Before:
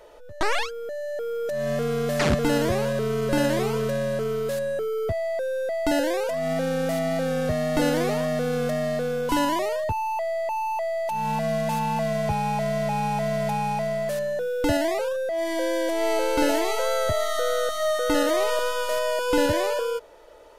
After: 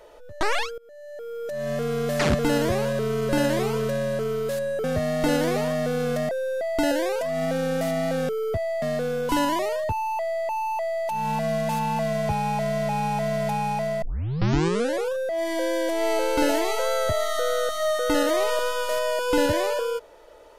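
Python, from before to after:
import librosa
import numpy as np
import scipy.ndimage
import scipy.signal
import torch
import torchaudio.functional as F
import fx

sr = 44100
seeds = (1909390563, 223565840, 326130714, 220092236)

y = fx.edit(x, sr, fx.fade_in_from(start_s=0.78, length_s=1.55, curve='qsin', floor_db=-23.5),
    fx.swap(start_s=4.84, length_s=0.53, other_s=7.37, other_length_s=1.45),
    fx.tape_start(start_s=14.02, length_s=1.1), tone=tone)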